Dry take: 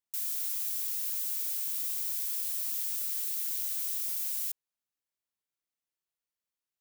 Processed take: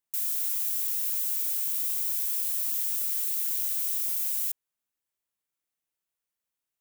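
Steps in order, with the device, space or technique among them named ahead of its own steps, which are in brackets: exciter from parts (in parallel at -9 dB: high-pass 4.3 kHz 24 dB/octave + saturation -28.5 dBFS, distortion -16 dB); on the sum: trim +2.5 dB

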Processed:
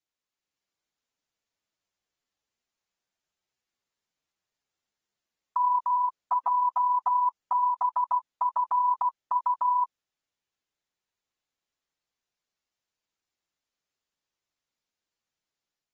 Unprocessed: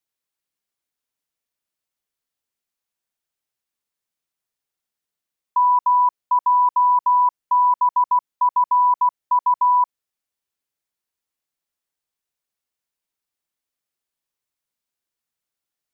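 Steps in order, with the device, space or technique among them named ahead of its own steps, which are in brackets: low-bitrate web radio (level rider gain up to 3.5 dB; peak limiter -17 dBFS, peak gain reduction 8 dB; trim -4.5 dB; AAC 24 kbps 48 kHz)

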